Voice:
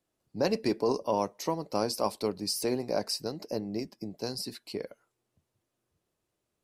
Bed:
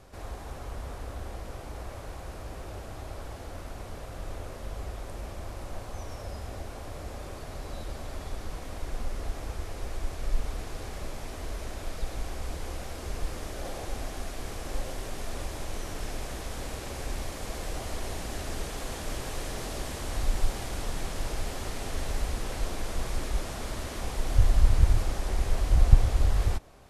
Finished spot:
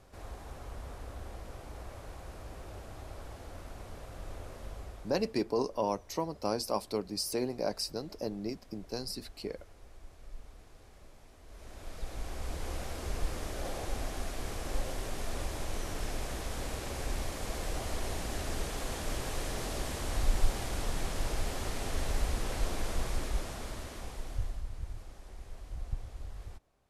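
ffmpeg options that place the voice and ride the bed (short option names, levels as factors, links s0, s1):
-filter_complex "[0:a]adelay=4700,volume=0.708[s0];[1:a]volume=3.98,afade=t=out:st=4.65:d=0.73:silence=0.223872,afade=t=in:st=11.45:d=1.3:silence=0.133352,afade=t=out:st=22.86:d=1.78:silence=0.11885[s1];[s0][s1]amix=inputs=2:normalize=0"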